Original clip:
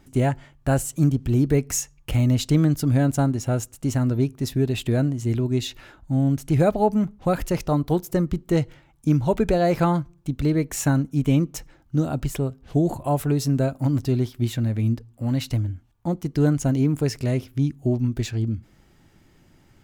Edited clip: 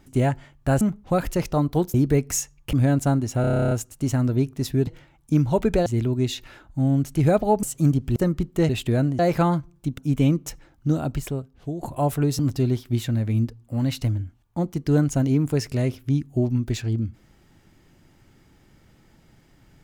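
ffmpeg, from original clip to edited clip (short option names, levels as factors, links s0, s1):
-filter_complex "[0:a]asplit=23[s0][s1][s2][s3][s4][s5][s6][s7][s8][s9][s10][s11][s12][s13][s14][s15][s16][s17][s18][s19][s20][s21][s22];[s0]atrim=end=0.812[s23];[s1]atrim=start=6.958:end=8.092[s24];[s2]atrim=start=1.338:end=2.132[s25];[s3]atrim=start=2.848:end=3.562[s26];[s4]atrim=start=3.528:end=3.562[s27];[s5]atrim=start=3.528:end=3.562[s28];[s6]atrim=start=3.528:end=3.562[s29];[s7]atrim=start=3.528:end=3.562[s30];[s8]atrim=start=3.528:end=3.562[s31];[s9]atrim=start=3.528:end=3.562[s32];[s10]atrim=start=3.528:end=3.562[s33];[s11]atrim=start=3.528:end=3.562[s34];[s12]atrim=start=3.528:end=3.562[s35];[s13]atrim=start=3.528:end=4.692[s36];[s14]atrim=start=8.618:end=9.612[s37];[s15]atrim=start=5.188:end=6.962[s38];[s16]atrim=start=0.808:end=1.342[s39];[s17]atrim=start=8.088:end=8.622[s40];[s18]atrim=start=4.688:end=5.192[s41];[s19]atrim=start=9.608:end=10.402[s42];[s20]atrim=start=11.058:end=12.91,asetpts=PTS-STARTPTS,afade=t=out:st=1.032:d=0.82:silence=0.199526[s43];[s21]atrim=start=12.91:end=13.472,asetpts=PTS-STARTPTS,afade=t=in:d=0.004:c=hsin:silence=0.199526[s44];[s22]atrim=start=13.878[s45];[s23][s24]acrossfade=d=0.004:c1=hsin:c2=hsin[s46];[s46][s25]acrossfade=d=0.004:c1=hsin:c2=hsin[s47];[s47][s26]acrossfade=d=0.004:c1=hsin:c2=hsin[s48];[s48][s27]acrossfade=d=0.004:c1=hsin:c2=hsin[s49];[s49][s28]acrossfade=d=0.004:c1=hsin:c2=hsin[s50];[s50][s29]acrossfade=d=0.004:c1=hsin:c2=hsin[s51];[s51][s30]acrossfade=d=0.004:c1=hsin:c2=hsin[s52];[s52][s31]acrossfade=d=0.004:c1=hsin:c2=hsin[s53];[s53][s32]acrossfade=d=0.004:c1=hsin:c2=hsin[s54];[s54][s33]acrossfade=d=0.004:c1=hsin:c2=hsin[s55];[s55][s34]acrossfade=d=0.004:c1=hsin:c2=hsin[s56];[s56][s35]acrossfade=d=0.004:c1=hsin:c2=hsin[s57];[s57][s36]acrossfade=d=0.004:c1=hsin:c2=hsin[s58];[s58][s37]acrossfade=d=0.004:c1=hsin:c2=hsin[s59];[s59][s38]acrossfade=d=0.004:c1=hsin:c2=hsin[s60];[s60][s39]acrossfade=d=0.004:c1=hsin:c2=hsin[s61];[s61][s40]acrossfade=d=0.004:c1=hsin:c2=hsin[s62];[s62][s41]acrossfade=d=0.004:c1=hsin:c2=hsin[s63];[s63][s42]acrossfade=d=0.004:c1=hsin:c2=hsin[s64];[s43][s44]concat=n=2:v=0:a=1[s65];[s64][s65]acrossfade=d=0.004:c1=hsin:c2=hsin[s66];[s66][s45]acrossfade=d=0.004:c1=hsin:c2=hsin"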